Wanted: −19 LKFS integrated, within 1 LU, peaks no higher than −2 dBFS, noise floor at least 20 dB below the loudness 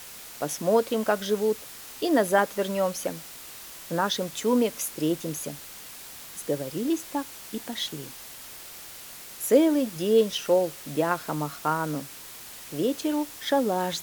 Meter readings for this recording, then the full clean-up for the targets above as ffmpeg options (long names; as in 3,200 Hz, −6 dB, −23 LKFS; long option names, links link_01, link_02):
background noise floor −43 dBFS; target noise floor −47 dBFS; integrated loudness −26.5 LKFS; sample peak −7.5 dBFS; target loudness −19.0 LKFS
→ -af "afftdn=noise_reduction=6:noise_floor=-43"
-af "volume=7.5dB,alimiter=limit=-2dB:level=0:latency=1"